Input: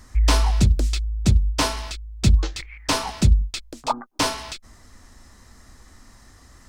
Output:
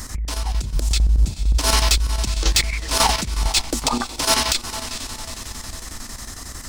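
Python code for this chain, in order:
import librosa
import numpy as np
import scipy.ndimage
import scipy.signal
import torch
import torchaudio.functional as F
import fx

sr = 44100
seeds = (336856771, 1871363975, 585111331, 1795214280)

p1 = fx.high_shelf(x, sr, hz=5000.0, db=11.5)
p2 = fx.over_compress(p1, sr, threshold_db=-26.0, ratio=-1.0)
p3 = p2 + fx.echo_diffused(p2, sr, ms=451, feedback_pct=53, wet_db=-12.0, dry=0)
p4 = np.clip(p3, -10.0 ** (-16.5 / 20.0), 10.0 ** (-16.5 / 20.0))
p5 = fx.chopper(p4, sr, hz=11.0, depth_pct=60, duty_pct=75)
y = p5 * 10.0 ** (7.0 / 20.0)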